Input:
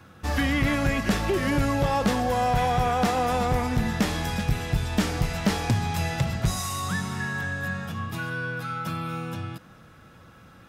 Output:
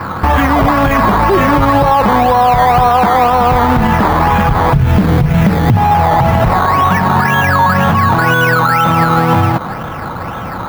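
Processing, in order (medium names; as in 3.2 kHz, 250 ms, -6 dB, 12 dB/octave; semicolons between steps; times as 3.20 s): decimation with a swept rate 13×, swing 60% 2 Hz; peaking EQ 1 kHz +12 dB 1 oct, from 4.74 s 150 Hz, from 5.77 s 890 Hz; compression 8:1, threshold -28 dBFS, peak gain reduction 17 dB; peaking EQ 7.8 kHz -13.5 dB 1.7 oct; loudness maximiser +27 dB; trim -1 dB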